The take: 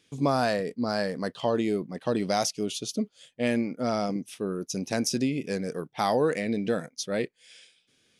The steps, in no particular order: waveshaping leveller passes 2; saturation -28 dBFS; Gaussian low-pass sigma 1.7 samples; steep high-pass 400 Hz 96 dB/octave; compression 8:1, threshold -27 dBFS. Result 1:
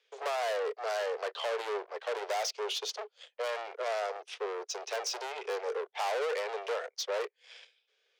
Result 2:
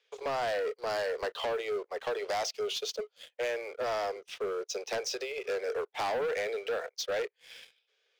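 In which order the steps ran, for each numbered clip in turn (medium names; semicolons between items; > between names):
waveshaping leveller > Gaussian low-pass > saturation > steep high-pass > compression; Gaussian low-pass > compression > steep high-pass > waveshaping leveller > saturation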